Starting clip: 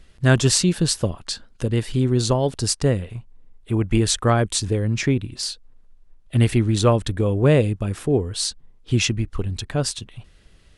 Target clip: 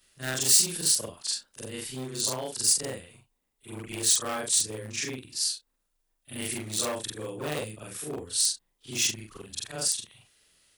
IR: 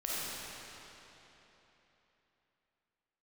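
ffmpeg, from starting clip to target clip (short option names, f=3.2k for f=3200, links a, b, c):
-af "afftfilt=real='re':imag='-im':win_size=4096:overlap=0.75,asoftclip=type=hard:threshold=-18.5dB,aemphasis=mode=production:type=riaa,volume=-5.5dB"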